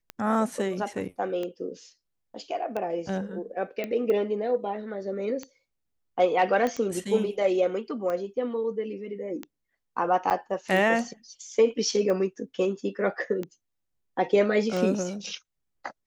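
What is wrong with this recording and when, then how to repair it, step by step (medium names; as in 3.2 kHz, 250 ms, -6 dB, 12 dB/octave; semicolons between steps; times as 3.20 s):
tick 45 rpm -20 dBFS
3.84 s: pop -18 dBFS
6.67 s: pop -16 dBFS
10.30–10.31 s: dropout 7.7 ms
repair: de-click; interpolate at 10.30 s, 7.7 ms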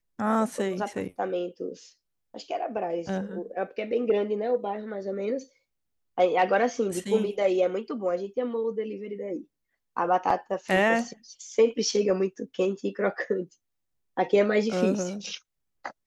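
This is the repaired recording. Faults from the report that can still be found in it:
nothing left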